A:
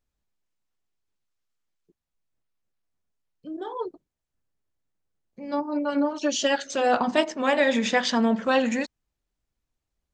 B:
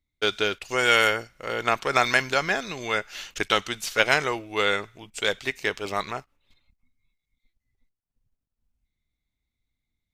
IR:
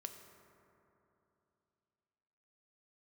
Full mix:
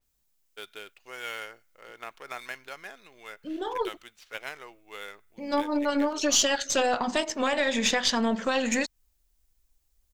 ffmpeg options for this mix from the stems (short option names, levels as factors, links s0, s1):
-filter_complex "[0:a]asubboost=boost=4.5:cutoff=61,alimiter=limit=0.112:level=0:latency=1:release=226,volume=1.26[s0];[1:a]bass=f=250:g=-9,treble=f=4000:g=-12,adynamicsmooth=sensitivity=7.5:basefreq=4000,adelay=350,volume=0.119[s1];[s0][s1]amix=inputs=2:normalize=0,aemphasis=mode=production:type=75kf,aeval=exprs='0.596*(cos(1*acos(clip(val(0)/0.596,-1,1)))-cos(1*PI/2))+0.00473*(cos(7*acos(clip(val(0)/0.596,-1,1)))-cos(7*PI/2))+0.0168*(cos(8*acos(clip(val(0)/0.596,-1,1)))-cos(8*PI/2))':c=same,adynamicequalizer=threshold=0.0126:dfrequency=5100:dqfactor=0.7:tfrequency=5100:tqfactor=0.7:attack=5:release=100:ratio=0.375:range=2.5:mode=cutabove:tftype=highshelf"